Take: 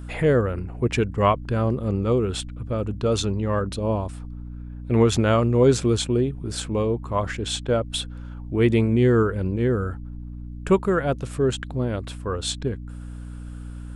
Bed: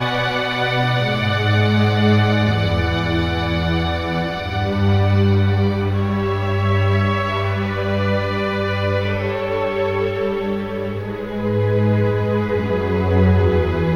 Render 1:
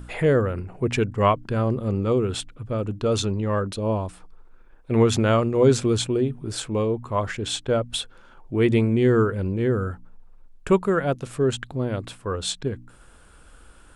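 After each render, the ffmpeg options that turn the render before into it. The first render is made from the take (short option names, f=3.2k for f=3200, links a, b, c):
-af "bandreject=f=60:t=h:w=4,bandreject=f=120:t=h:w=4,bandreject=f=180:t=h:w=4,bandreject=f=240:t=h:w=4,bandreject=f=300:t=h:w=4"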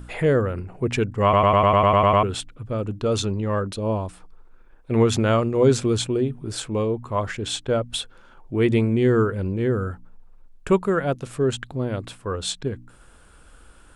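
-filter_complex "[0:a]asplit=11[a][b][c][d][e][f][g][h][i][j][k];[a]atrim=end=1.332[l];[b]atrim=start=1.228:end=1.332[m];[c]atrim=start=1.228:end=1.332[n];[d]atrim=start=1.228:end=1.332[o];[e]atrim=start=1.228:end=1.332[p];[f]atrim=start=1.228:end=1.332[q];[g]atrim=start=1.228:end=1.332[r];[h]atrim=start=1.228:end=1.332[s];[i]atrim=start=1.228:end=1.332[t];[j]atrim=start=1.228:end=1.332[u];[k]atrim=start=2.228[v];[l][m]acrossfade=d=0.004:c1=hsin:c2=hsin[w];[w][n]acrossfade=d=0.004:c1=hsin:c2=hsin[x];[x][o]acrossfade=d=0.004:c1=hsin:c2=hsin[y];[y][p]acrossfade=d=0.004:c1=hsin:c2=hsin[z];[z][q]acrossfade=d=0.004:c1=hsin:c2=hsin[aa];[aa][r]acrossfade=d=0.004:c1=hsin:c2=hsin[ab];[ab][s]acrossfade=d=0.004:c1=hsin:c2=hsin[ac];[ac][t]acrossfade=d=0.004:c1=hsin:c2=hsin[ad];[ad][u]acrossfade=d=0.004:c1=hsin:c2=hsin[ae];[ae][v]acrossfade=d=0.004:c1=hsin:c2=hsin"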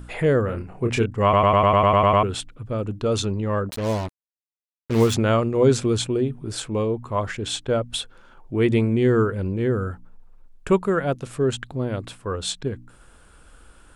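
-filter_complex "[0:a]asettb=1/sr,asplit=3[a][b][c];[a]atrim=end=0.454[d];[b]atrim=start=0.45:end=1.06,asetpts=PTS-STARTPTS,afade=t=in:d=0.004:c=qsin,afade=t=out:st=0.606:d=0.004:c=qsin,asplit=2[e][f];[f]adelay=26,volume=-5dB[g];[e][g]amix=inputs=2:normalize=0,atrim=end_sample=26901[h];[c]atrim=start=1.056[i];[d][h]acrossfade=d=0.004:c1=hsin:c2=qsin[j];[j][i]acrossfade=d=0.004:c1=qsin:c2=hsin,asettb=1/sr,asplit=3[k][l][m];[k]atrim=end=3.694[n];[l]atrim=start=3.69:end=5.14,asetpts=PTS-STARTPTS,afade=t=in:d=0.004:c=qsin,afade=t=out:st=1.446:d=0.004:c=qsin,acrusher=bits=4:mix=0:aa=0.5[o];[m]atrim=start=5.136[p];[n][o]acrossfade=d=0.004:c1=hsin:c2=qsin[q];[q][p]acrossfade=d=0.004:c1=qsin:c2=hsin"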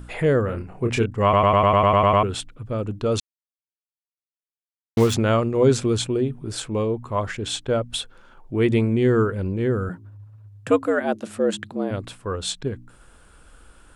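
-filter_complex "[0:a]asettb=1/sr,asplit=3[a][b][c];[a]atrim=end=9.894[d];[b]atrim=start=9.89:end=11.91,asetpts=PTS-STARTPTS,afade=t=in:d=0.004:c=qsin,afade=t=out:st=2.016:d=0.004:c=qsin,afreqshift=89[e];[c]atrim=start=11.906[f];[d][e]acrossfade=d=0.004:c1=hsin:c2=qsin[g];[g][f]acrossfade=d=0.004:c1=qsin:c2=hsin,asplit=3[h][i][j];[h]atrim=end=3.2,asetpts=PTS-STARTPTS,afade=t=out:st=3.196:d=0.004:c=hsin[k];[i]atrim=start=3.2:end=4.97,asetpts=PTS-STARTPTS,volume=0[l];[j]atrim=start=4.97,asetpts=PTS-STARTPTS,afade=t=in:d=0.004:c=hsin[m];[k][l][m]concat=n=3:v=0:a=1"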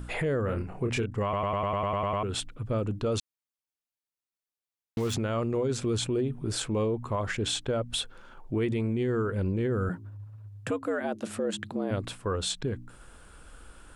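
-af "acompressor=threshold=-23dB:ratio=6,alimiter=limit=-21dB:level=0:latency=1:release=16"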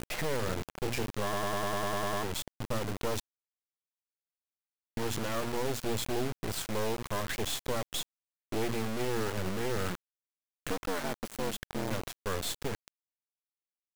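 -af "aeval=exprs='sgn(val(0))*max(abs(val(0))-0.00168,0)':c=same,acrusher=bits=3:dc=4:mix=0:aa=0.000001"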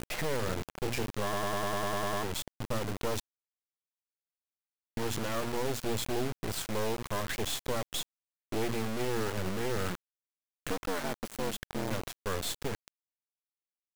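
-af anull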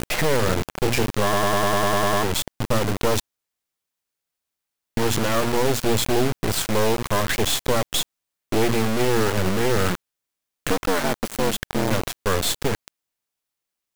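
-af "volume=12dB"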